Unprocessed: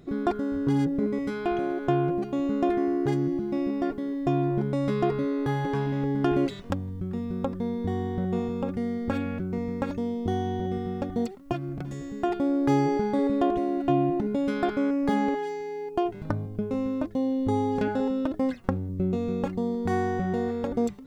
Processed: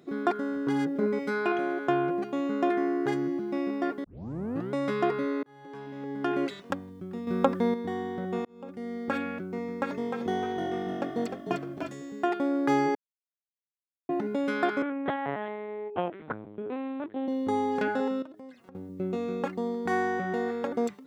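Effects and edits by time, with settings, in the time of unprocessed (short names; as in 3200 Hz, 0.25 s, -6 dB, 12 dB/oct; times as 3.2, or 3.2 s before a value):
0.95–1.52 comb 4.9 ms, depth 67%
4.04 tape start 0.68 s
5.43–6.66 fade in
7.27–7.74 gain +7.5 dB
8.45–9.04 fade in
9.61–11.89 frequency-shifting echo 0.304 s, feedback 46%, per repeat -48 Hz, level -5 dB
12.95–14.09 mute
14.82–17.28 LPC vocoder at 8 kHz pitch kept
18.22–18.75 compressor 4:1, threshold -43 dBFS
whole clip: HPF 240 Hz 12 dB/oct; dynamic EQ 1600 Hz, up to +7 dB, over -46 dBFS, Q 0.96; gain -1.5 dB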